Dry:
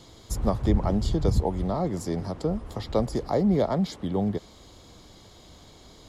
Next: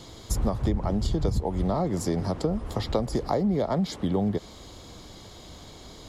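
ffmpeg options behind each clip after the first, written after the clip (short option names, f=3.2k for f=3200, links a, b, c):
-af "acompressor=threshold=-26dB:ratio=10,volume=5dB"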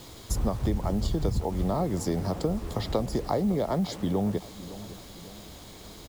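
-filter_complex "[0:a]acrusher=bits=7:mix=0:aa=0.000001,asplit=2[a][b];[b]adelay=557,lowpass=f=2k:p=1,volume=-15.5dB,asplit=2[c][d];[d]adelay=557,lowpass=f=2k:p=1,volume=0.49,asplit=2[e][f];[f]adelay=557,lowpass=f=2k:p=1,volume=0.49,asplit=2[g][h];[h]adelay=557,lowpass=f=2k:p=1,volume=0.49[i];[a][c][e][g][i]amix=inputs=5:normalize=0,volume=-1.5dB"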